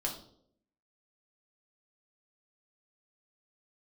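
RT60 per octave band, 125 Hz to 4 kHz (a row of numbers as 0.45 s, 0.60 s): 0.80 s, 0.85 s, 0.80 s, 0.55 s, 0.40 s, 0.50 s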